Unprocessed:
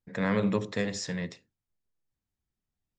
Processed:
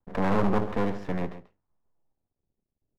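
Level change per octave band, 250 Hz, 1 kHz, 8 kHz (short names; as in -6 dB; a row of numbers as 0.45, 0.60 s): +1.5 dB, +8.5 dB, under -15 dB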